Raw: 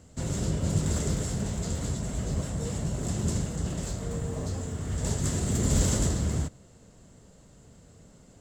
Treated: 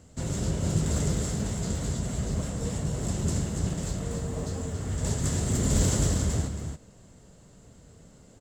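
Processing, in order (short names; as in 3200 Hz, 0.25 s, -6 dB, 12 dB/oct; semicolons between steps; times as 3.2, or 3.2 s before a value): echo 0.279 s -6.5 dB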